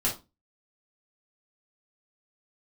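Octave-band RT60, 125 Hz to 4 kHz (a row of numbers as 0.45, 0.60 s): 0.35, 0.35, 0.25, 0.25, 0.20, 0.20 s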